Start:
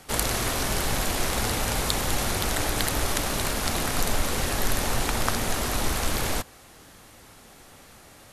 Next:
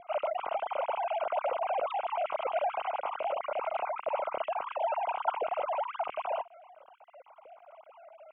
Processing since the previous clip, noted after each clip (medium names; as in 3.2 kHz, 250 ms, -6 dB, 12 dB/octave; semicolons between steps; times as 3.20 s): formants replaced by sine waves; boxcar filter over 25 samples; trim -2.5 dB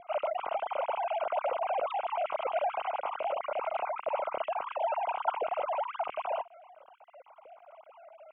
no audible change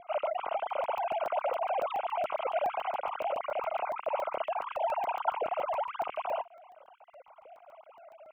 crackling interface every 0.14 s, samples 64, zero, from 0.70 s